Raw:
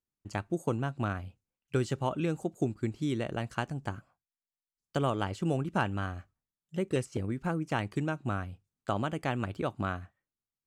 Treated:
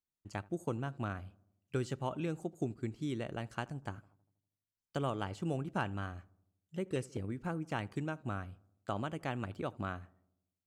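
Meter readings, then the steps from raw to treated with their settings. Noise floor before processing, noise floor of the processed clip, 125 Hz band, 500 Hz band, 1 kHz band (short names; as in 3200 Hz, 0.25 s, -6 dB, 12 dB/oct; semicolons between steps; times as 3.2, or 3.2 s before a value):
under -85 dBFS, under -85 dBFS, -6.0 dB, -6.0 dB, -6.0 dB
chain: darkening echo 80 ms, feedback 59%, low-pass 1200 Hz, level -22 dB; gain -6 dB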